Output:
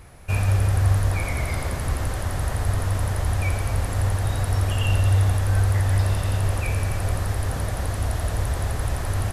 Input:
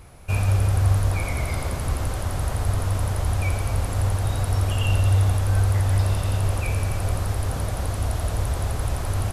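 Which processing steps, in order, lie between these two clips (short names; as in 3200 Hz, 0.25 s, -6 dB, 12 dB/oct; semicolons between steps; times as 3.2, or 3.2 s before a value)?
bell 1800 Hz +6 dB 0.3 oct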